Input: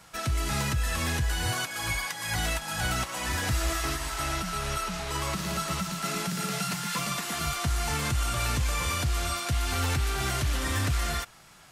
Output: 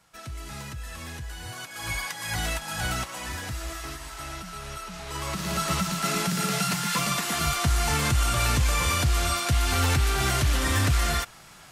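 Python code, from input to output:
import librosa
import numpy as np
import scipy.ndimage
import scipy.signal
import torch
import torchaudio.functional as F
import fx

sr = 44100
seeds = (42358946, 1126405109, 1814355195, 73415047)

y = fx.gain(x, sr, db=fx.line((1.51, -9.5), (1.96, 0.0), (2.93, 0.0), (3.54, -6.5), (4.85, -6.5), (5.69, 4.5)))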